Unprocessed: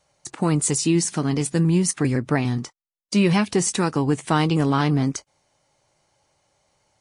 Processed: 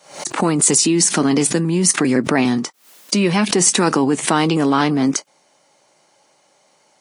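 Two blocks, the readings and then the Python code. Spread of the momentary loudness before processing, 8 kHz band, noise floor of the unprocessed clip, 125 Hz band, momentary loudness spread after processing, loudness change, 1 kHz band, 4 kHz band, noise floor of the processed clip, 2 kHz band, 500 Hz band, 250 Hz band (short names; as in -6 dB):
7 LU, +10.0 dB, under -85 dBFS, -2.0 dB, 8 LU, +5.0 dB, +6.0 dB, +8.5 dB, -58 dBFS, +6.5 dB, +5.5 dB, +4.5 dB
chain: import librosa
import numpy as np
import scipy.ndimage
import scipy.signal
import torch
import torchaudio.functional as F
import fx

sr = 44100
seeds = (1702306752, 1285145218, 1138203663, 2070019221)

p1 = fx.over_compress(x, sr, threshold_db=-22.0, ratio=-0.5)
p2 = x + (p1 * librosa.db_to_amplitude(2.0))
p3 = scipy.signal.sosfilt(scipy.signal.butter(4, 190.0, 'highpass', fs=sr, output='sos'), p2)
p4 = fx.pre_swell(p3, sr, db_per_s=120.0)
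y = p4 * librosa.db_to_amplitude(1.0)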